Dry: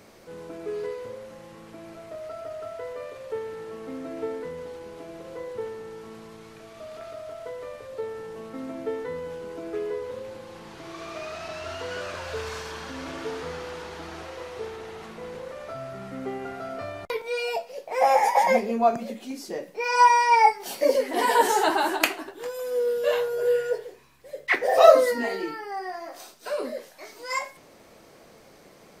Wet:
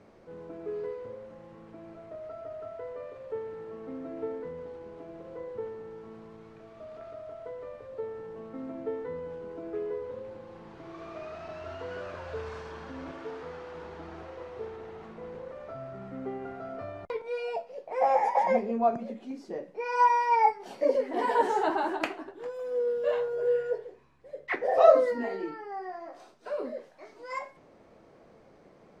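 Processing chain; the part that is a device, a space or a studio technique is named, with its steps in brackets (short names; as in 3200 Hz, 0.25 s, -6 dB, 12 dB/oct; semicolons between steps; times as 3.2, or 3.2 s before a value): 13.11–13.75 low shelf 340 Hz -7 dB; through cloth (LPF 8100 Hz 12 dB/oct; high shelf 2400 Hz -16.5 dB); gain -3 dB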